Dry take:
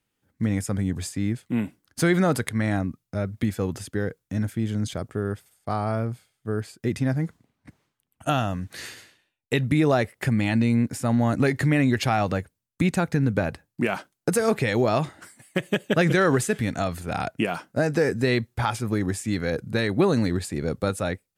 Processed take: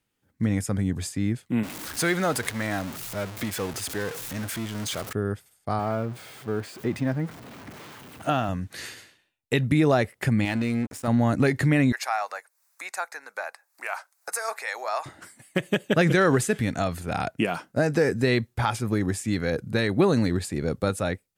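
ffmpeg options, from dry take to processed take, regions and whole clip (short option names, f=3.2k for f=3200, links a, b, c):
-filter_complex "[0:a]asettb=1/sr,asplit=3[a][b][c];[a]atrim=end=1.634[d];[b]atrim=start=1.63:end=5.13,asetpts=PTS-STARTPTS,afade=t=in:d=0.004:c=qsin,afade=t=out:st=3.496:d=0.004:c=qsin,aeval=exprs='val(0)+0.5*0.0398*sgn(val(0))':c=same,lowshelf=f=350:g=-11.5[e];[c]atrim=start=5.126[f];[d][e]acrossfade=d=0.004:c1=hsin:c2=qsin[g];[g][f]acrossfade=d=0.004:c1=qsin:c2=hsin,asettb=1/sr,asplit=3[h][i][j];[h]atrim=end=5.794[k];[i]atrim=start=5.79:end=8.49,asetpts=PTS-STARTPTS,afade=t=in:d=0.004:c=qsin,afade=t=out:st=2.696:d=0.004:c=qsin,aeval=exprs='val(0)+0.5*0.0188*sgn(val(0))':c=same,highpass=f=190:p=1,equalizer=f=10k:t=o:w=2.5:g=-9[l];[j]atrim=start=8.486[m];[k][l]acrossfade=d=0.004:c1=hsin:c2=qsin[n];[n][m]acrossfade=d=0.004:c1=qsin:c2=hsin,asettb=1/sr,asplit=3[o][p][q];[o]atrim=end=10.454[r];[p]atrim=start=10.45:end=11.08,asetpts=PTS-STARTPTS,afade=t=in:d=0.004:c=qsin,afade=t=out:st=0.626:d=0.004:c=qsin,equalizer=f=150:w=1.8:g=-11.5,aeval=exprs='sgn(val(0))*max(abs(val(0))-0.0112,0)':c=same[s];[q]atrim=start=11.076[t];[r][s]acrossfade=d=0.004:c1=hsin:c2=qsin[u];[u][t]acrossfade=d=0.004:c1=qsin:c2=hsin,asettb=1/sr,asplit=3[v][w][x];[v]atrim=end=11.924[y];[w]atrim=start=11.92:end=15.06,asetpts=PTS-STARTPTS,afade=t=in:d=0.004:c=qsin,afade=t=out:st=3.136:d=0.004:c=qsin,highpass=f=760:w=0.5412,highpass=f=760:w=1.3066,acompressor=mode=upward:threshold=-45dB:ratio=2.5:attack=3.2:release=140:knee=2.83:detection=peak,equalizer=f=3.1k:w=2.7:g=-13.5[z];[x]atrim=start=15.056[aa];[y][z]acrossfade=d=0.004:c1=hsin:c2=qsin[ab];[ab][aa]acrossfade=d=0.004:c1=qsin:c2=hsin"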